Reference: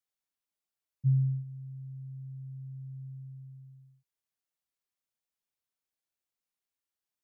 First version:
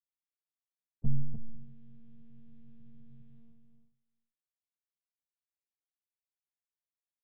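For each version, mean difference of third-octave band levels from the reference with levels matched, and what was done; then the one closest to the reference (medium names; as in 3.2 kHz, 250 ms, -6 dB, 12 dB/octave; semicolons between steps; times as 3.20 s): 5.0 dB: gate -47 dBFS, range -20 dB; delay 311 ms -7.5 dB; monotone LPC vocoder at 8 kHz 230 Hz; trim +4.5 dB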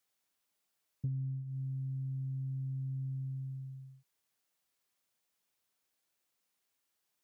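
2.5 dB: bass shelf 70 Hz -10 dB; compression 10:1, threshold -44 dBFS, peak gain reduction 19 dB; loudspeaker Doppler distortion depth 0.33 ms; trim +9 dB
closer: second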